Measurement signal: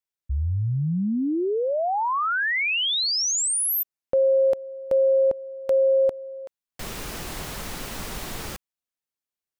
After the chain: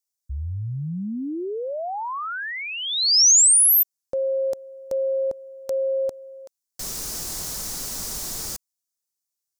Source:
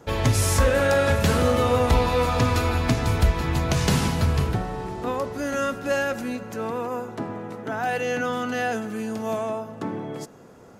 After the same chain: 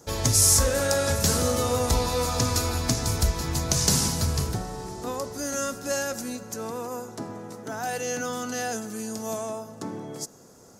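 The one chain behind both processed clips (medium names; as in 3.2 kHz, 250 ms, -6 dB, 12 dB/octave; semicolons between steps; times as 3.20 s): resonant high shelf 4 kHz +12 dB, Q 1.5; trim -4.5 dB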